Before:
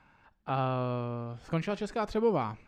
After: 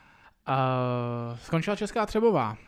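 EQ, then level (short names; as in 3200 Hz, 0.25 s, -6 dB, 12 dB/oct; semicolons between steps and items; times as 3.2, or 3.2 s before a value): high shelf 2300 Hz +8.5 dB; dynamic EQ 4600 Hz, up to -6 dB, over -53 dBFS, Q 1.1; +4.0 dB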